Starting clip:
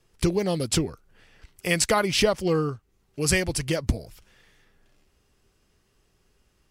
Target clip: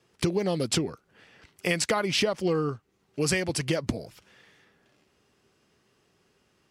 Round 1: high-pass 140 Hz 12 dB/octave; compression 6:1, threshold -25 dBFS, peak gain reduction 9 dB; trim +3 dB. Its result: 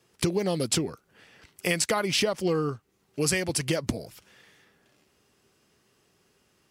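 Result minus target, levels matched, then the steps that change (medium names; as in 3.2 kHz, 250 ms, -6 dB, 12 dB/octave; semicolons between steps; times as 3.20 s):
8 kHz band +2.5 dB
add after high-pass: treble shelf 8.5 kHz -11 dB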